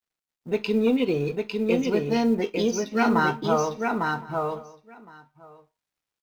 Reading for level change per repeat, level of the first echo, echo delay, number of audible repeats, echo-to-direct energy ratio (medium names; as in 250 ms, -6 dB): no regular repeats, -3.5 dB, 852 ms, 3, -3.5 dB